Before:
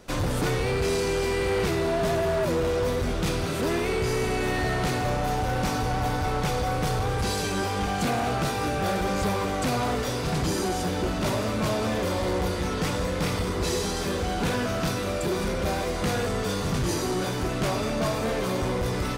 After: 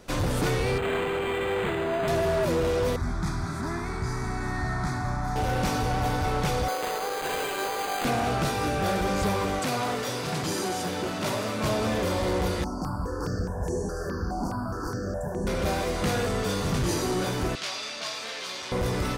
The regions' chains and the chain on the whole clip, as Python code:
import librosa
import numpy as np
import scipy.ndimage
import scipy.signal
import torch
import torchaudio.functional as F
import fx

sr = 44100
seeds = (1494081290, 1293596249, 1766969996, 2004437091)

y = fx.chain(x, sr, fx.highpass(hz=60.0, slope=12),
    fx.tilt_eq(slope=2.0),
    fx.resample_linear(factor=8), at=(0.78, 2.08))
y = fx.chain(y, sr, fx.air_absorb(metres=53.0),
    fx.fixed_phaser(hz=1200.0, stages=4), at=(2.96, 5.36))
y = fx.chain(y, sr, fx.highpass(hz=380.0, slope=24),
    fx.resample_bad(factor=8, down='none', up='hold'), at=(6.68, 8.05))
y = fx.chain(y, sr, fx.highpass(hz=94.0, slope=24),
    fx.low_shelf(hz=440.0, db=-5.0), at=(9.59, 11.64))
y = fx.chain(y, sr, fx.brickwall_bandstop(low_hz=1800.0, high_hz=4300.0),
    fx.high_shelf(hz=4400.0, db=-10.5),
    fx.phaser_held(hz=4.8, low_hz=460.0, high_hz=4800.0), at=(12.64, 15.47))
y = fx.chain(y, sr, fx.bandpass_q(hz=3500.0, q=0.77),
    fx.peak_eq(hz=5000.0, db=5.5, octaves=1.4), at=(17.55, 18.72))